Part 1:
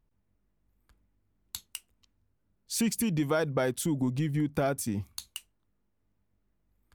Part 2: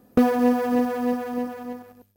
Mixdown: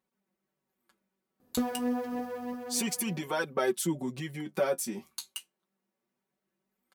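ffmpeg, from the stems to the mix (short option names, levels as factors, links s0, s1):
-filter_complex "[0:a]highpass=280,aecho=1:1:5.3:0.98,volume=1.26[s0];[1:a]adelay=1400,volume=0.398[s1];[s0][s1]amix=inputs=2:normalize=0,flanger=delay=3.7:depth=9.9:regen=39:speed=0.29:shape=triangular"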